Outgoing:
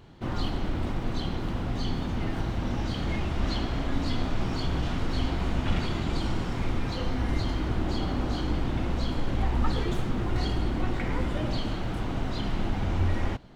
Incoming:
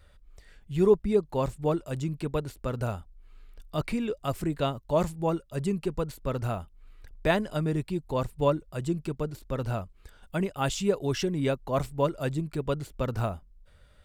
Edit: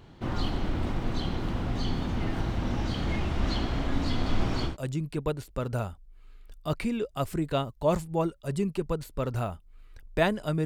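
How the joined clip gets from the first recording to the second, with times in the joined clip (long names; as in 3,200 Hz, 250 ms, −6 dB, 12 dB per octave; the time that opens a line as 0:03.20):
outgoing
0:04.08–0:04.77: single-tap delay 182 ms −5.5 dB
0:04.70: continue with incoming from 0:01.78, crossfade 0.14 s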